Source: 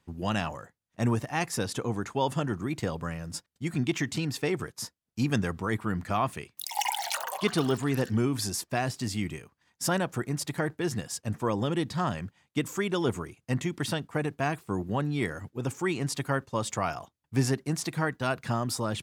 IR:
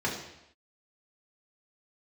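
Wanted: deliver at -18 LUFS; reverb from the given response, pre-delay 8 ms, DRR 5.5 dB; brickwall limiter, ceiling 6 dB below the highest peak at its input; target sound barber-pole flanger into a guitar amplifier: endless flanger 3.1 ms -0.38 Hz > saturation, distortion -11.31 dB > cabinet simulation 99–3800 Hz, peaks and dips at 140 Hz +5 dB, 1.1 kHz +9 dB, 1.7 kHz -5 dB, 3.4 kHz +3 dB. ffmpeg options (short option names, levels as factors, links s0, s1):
-filter_complex "[0:a]alimiter=limit=0.106:level=0:latency=1,asplit=2[s0][s1];[1:a]atrim=start_sample=2205,adelay=8[s2];[s1][s2]afir=irnorm=-1:irlink=0,volume=0.188[s3];[s0][s3]amix=inputs=2:normalize=0,asplit=2[s4][s5];[s5]adelay=3.1,afreqshift=-0.38[s6];[s4][s6]amix=inputs=2:normalize=1,asoftclip=threshold=0.0355,highpass=99,equalizer=f=140:t=q:w=4:g=5,equalizer=f=1100:t=q:w=4:g=9,equalizer=f=1700:t=q:w=4:g=-5,equalizer=f=3400:t=q:w=4:g=3,lowpass=f=3800:w=0.5412,lowpass=f=3800:w=1.3066,volume=7.5"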